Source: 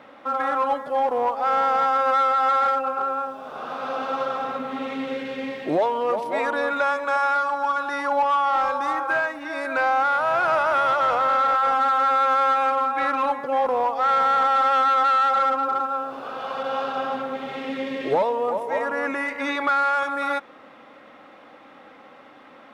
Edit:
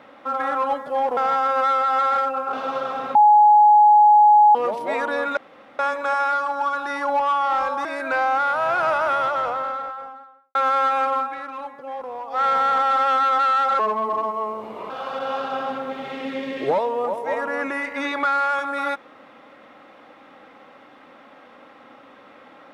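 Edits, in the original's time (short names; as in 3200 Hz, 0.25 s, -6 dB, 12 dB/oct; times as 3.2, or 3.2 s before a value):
1.17–1.67 cut
3.03–3.98 cut
4.6–6 bleep 839 Hz -9 dBFS
6.82 insert room tone 0.42 s
8.88–9.5 cut
10.6–12.2 studio fade out
12.85–14.06 dip -10.5 dB, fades 0.16 s
15.44–16.34 speed 81%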